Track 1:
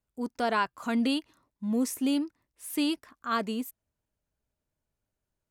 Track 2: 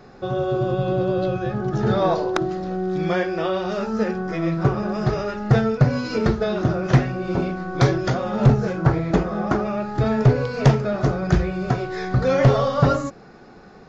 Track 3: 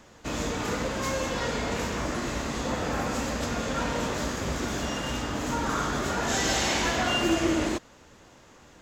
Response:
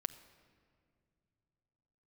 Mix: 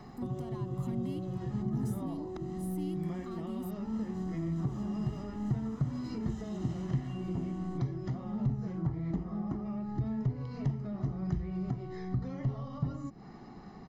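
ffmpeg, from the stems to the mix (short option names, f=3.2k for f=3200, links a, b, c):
-filter_complex "[0:a]highshelf=f=7.4k:g=10.5,acompressor=threshold=-34dB:ratio=6,asoftclip=type=tanh:threshold=-37.5dB,volume=-2dB,asplit=2[a][b];[1:a]acompressor=threshold=-30dB:ratio=4,volume=-6.5dB[c];[2:a]bandreject=f=2.2k:w=12,alimiter=limit=-23dB:level=0:latency=1:release=209,volume=-16.5dB[d];[b]apad=whole_len=388695[e];[d][e]sidechaincompress=threshold=-51dB:ratio=8:attack=16:release=346[f];[a][c][f]amix=inputs=3:normalize=0,equalizer=f=320:w=0.43:g=4.5,aecho=1:1:1:0.63,acrossover=split=360[g][h];[h]acompressor=threshold=-54dB:ratio=2.5[i];[g][i]amix=inputs=2:normalize=0"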